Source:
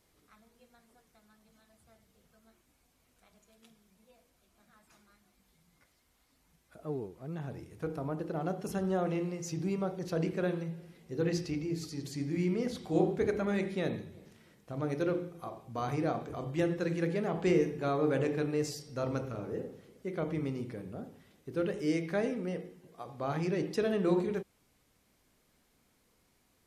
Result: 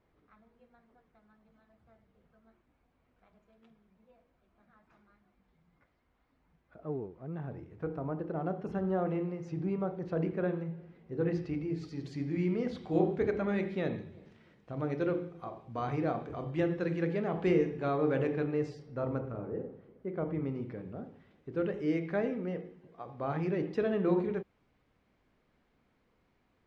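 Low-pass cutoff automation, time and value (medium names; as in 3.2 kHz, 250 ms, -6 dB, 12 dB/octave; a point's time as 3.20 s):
11.30 s 1.8 kHz
12.06 s 3.1 kHz
18.14 s 3.1 kHz
19.20 s 1.4 kHz
20.23 s 1.4 kHz
20.79 s 2.4 kHz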